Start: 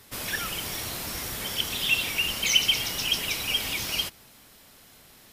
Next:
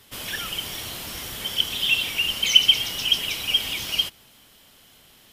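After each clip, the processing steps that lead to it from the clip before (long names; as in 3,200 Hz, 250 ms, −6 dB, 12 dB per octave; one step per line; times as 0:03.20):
parametric band 3,100 Hz +9 dB 0.31 octaves
level −1.5 dB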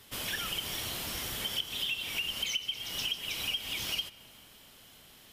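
downward compressor 12 to 1, threshold −28 dBFS, peak gain reduction 20.5 dB
on a send at −18 dB: convolution reverb RT60 4.1 s, pre-delay 15 ms
on the sum: level −2.5 dB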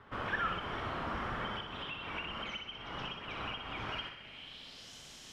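low-pass filter sweep 1,300 Hz → 6,500 Hz, 0:03.89–0:04.94
flutter between parallel walls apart 10.5 metres, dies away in 0.61 s
level +1.5 dB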